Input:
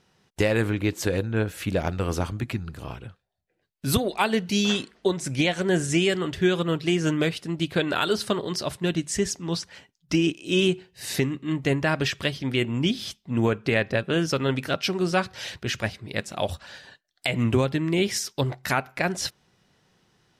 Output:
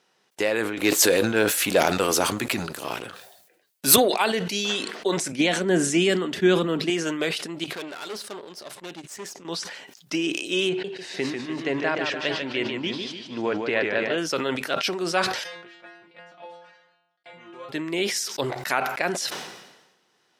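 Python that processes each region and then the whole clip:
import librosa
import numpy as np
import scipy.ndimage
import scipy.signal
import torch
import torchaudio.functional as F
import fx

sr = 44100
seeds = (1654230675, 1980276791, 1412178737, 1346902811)

y = fx.chain(x, sr, fx.high_shelf(hz=5200.0, db=11.0),
    fx.leveller(passes=2), at=(0.77, 3.96))
y = fx.chain(y, sr, fx.peak_eq(hz=220.0, db=14.0, octaves=0.94),
    fx.band_widen(depth_pct=40), at=(5.32, 6.9))
y = fx.chain(y, sr, fx.tube_stage(drive_db=28.0, bias=0.6),
    fx.upward_expand(threshold_db=-42.0, expansion=2.5), at=(7.64, 9.45))
y = fx.chain(y, sr, fx.air_absorb(metres=130.0),
    fx.notch(hz=1200.0, q=15.0),
    fx.echo_warbled(ms=149, feedback_pct=51, rate_hz=2.8, cents=138, wet_db=-5.5), at=(10.69, 14.18))
y = fx.envelope_flatten(y, sr, power=0.6, at=(15.43, 17.68), fade=0.02)
y = fx.lowpass(y, sr, hz=2100.0, slope=12, at=(15.43, 17.68), fade=0.02)
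y = fx.stiff_resonator(y, sr, f0_hz=170.0, decay_s=0.52, stiffness=0.002, at=(15.43, 17.68), fade=0.02)
y = scipy.signal.sosfilt(scipy.signal.butter(2, 360.0, 'highpass', fs=sr, output='sos'), y)
y = fx.sustainer(y, sr, db_per_s=54.0)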